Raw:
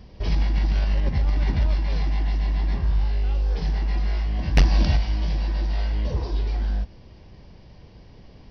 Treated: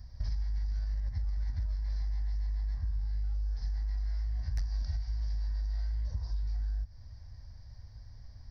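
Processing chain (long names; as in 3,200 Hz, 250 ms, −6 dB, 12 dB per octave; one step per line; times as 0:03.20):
drawn EQ curve 110 Hz 0 dB, 150 Hz −21 dB, 250 Hz −16 dB, 360 Hz −29 dB, 650 Hz −14 dB, 1,100 Hz −13 dB, 1,800 Hz −7 dB, 2,800 Hz −26 dB, 4,700 Hz −3 dB, 7,100 Hz 0 dB
downward compressor 6 to 1, threshold −31 dBFS, peak gain reduction 18 dB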